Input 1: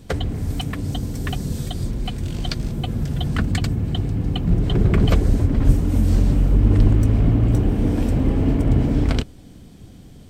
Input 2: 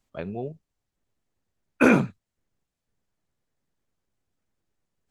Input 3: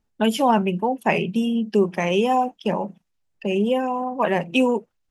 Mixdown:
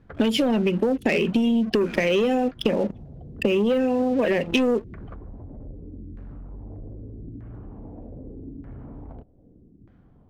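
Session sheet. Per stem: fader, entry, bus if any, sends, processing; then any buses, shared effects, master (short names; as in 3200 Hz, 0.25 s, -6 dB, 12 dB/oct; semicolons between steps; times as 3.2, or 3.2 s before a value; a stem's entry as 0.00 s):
-12.0 dB, 0.00 s, no send, soft clip -12.5 dBFS, distortion -14 dB; LFO low-pass saw down 0.81 Hz 270–1700 Hz; compressor 2.5:1, threshold -29 dBFS, peak gain reduction 11 dB
-8.5 dB, 0.00 s, no send, bell 550 Hz -7.5 dB 1.3 oct; sample leveller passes 2; auto duck -10 dB, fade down 0.40 s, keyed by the third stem
-4.0 dB, 0.00 s, no send, ten-band EQ 125 Hz -3 dB, 250 Hz +11 dB, 500 Hz +12 dB, 1000 Hz -12 dB, 2000 Hz +11 dB, 4000 Hz +10 dB; sample leveller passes 2; compressor, threshold -5 dBFS, peak gain reduction 6 dB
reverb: off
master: compressor, threshold -19 dBFS, peak gain reduction 10 dB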